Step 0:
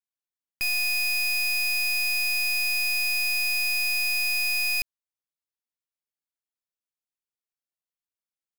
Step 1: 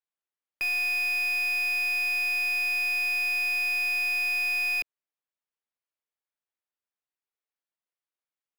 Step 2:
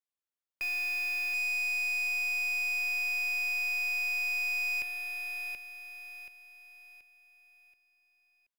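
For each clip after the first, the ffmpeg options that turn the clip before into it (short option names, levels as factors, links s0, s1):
-filter_complex "[0:a]acrossover=split=290 3300:gain=0.2 1 0.2[s0][s1][s2];[s0][s1][s2]amix=inputs=3:normalize=0,volume=1.26"
-af "aecho=1:1:729|1458|2187|2916|3645:0.531|0.202|0.0767|0.0291|0.0111,asoftclip=type=hard:threshold=0.0596,volume=0.562"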